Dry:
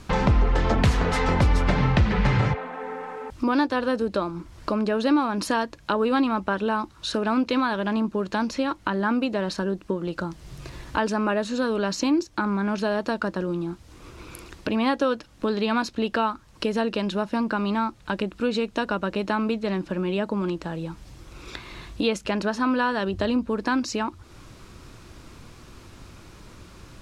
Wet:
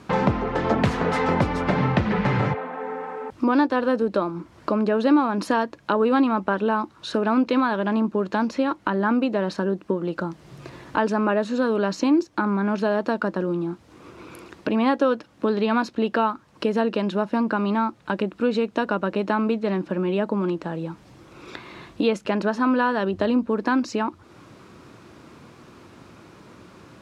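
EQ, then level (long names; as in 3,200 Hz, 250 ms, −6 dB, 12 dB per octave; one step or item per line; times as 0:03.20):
high-pass filter 160 Hz 12 dB per octave
high-shelf EQ 2,800 Hz −11 dB
+3.5 dB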